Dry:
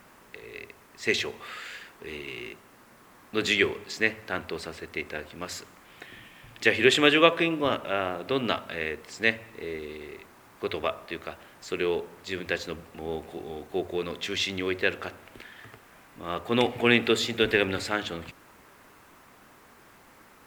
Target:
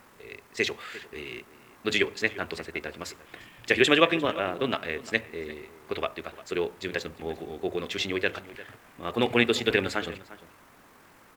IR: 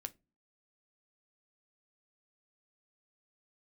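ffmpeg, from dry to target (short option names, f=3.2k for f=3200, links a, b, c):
-filter_complex "[0:a]atempo=1.8,asplit=2[a][b];[b]adelay=349.9,volume=-17dB,highshelf=f=4k:g=-7.87[c];[a][c]amix=inputs=2:normalize=0"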